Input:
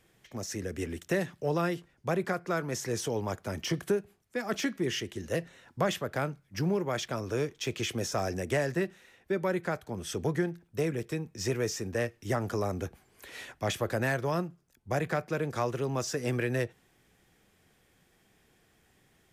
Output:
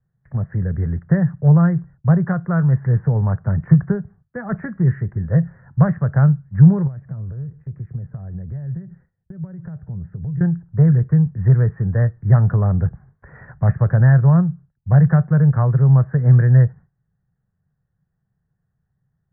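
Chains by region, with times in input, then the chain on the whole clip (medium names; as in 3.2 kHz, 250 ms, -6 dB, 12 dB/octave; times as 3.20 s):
6.87–10.41 s: compression 16:1, threshold -39 dBFS + peaking EQ 1.3 kHz -11 dB 2.8 oct + delay 146 ms -23.5 dB
whole clip: steep low-pass 1.8 kHz 72 dB/octave; gate with hold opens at -55 dBFS; resonant low shelf 210 Hz +12 dB, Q 3; trim +5.5 dB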